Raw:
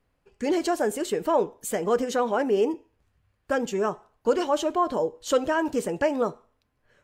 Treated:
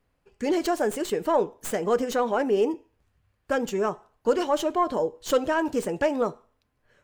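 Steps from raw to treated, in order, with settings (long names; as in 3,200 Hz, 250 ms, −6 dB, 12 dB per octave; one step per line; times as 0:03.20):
stylus tracing distortion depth 0.048 ms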